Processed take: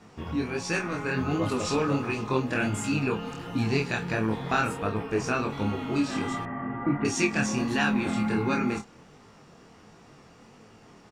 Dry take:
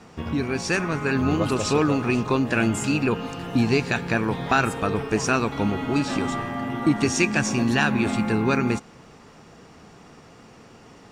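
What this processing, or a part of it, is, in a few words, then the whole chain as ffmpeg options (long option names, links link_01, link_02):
double-tracked vocal: -filter_complex "[0:a]asplit=2[link_01][link_02];[link_02]adelay=28,volume=-7.5dB[link_03];[link_01][link_03]amix=inputs=2:normalize=0,flanger=delay=18:depth=6.6:speed=1.4,asettb=1/sr,asplit=3[link_04][link_05][link_06];[link_04]atrim=end=4.774[link_07];[link_05]atrim=start=4.77:end=5.5,asetpts=PTS-STARTPTS,afade=type=in:duration=0.004:curve=qsin,afade=type=out:start_time=0.726:duration=0.004:curve=qsin,equalizer=frequency=7500:width=0.69:gain=-5.5[link_08];[link_06]atrim=start=5.496[link_09];[link_07][link_08]acrossfade=duration=0.004:curve1=hsin:curve2=qsin[link_10];[link_10][link_09]acrossfade=duration=0.004:curve1=qsin:curve2=hsin,asettb=1/sr,asplit=3[link_11][link_12][link_13];[link_11]atrim=end=6.454[link_14];[link_12]atrim=start=6.45:end=7.05,asetpts=PTS-STARTPTS,afade=type=in:duration=0.004:curve=qsin,afade=type=out:start_time=0.596:duration=0.004:curve=qsin,lowpass=frequency=2000:width=0.5412,lowpass=frequency=2000:width=1.3066[link_15];[link_13]atrim=start=7.046[link_16];[link_14][link_15]acrossfade=duration=0.004:curve1=hsin:curve2=qsin[link_17];[link_17][link_16]acrossfade=duration=0.004:curve1=qsin:curve2=hsin,volume=-2.5dB"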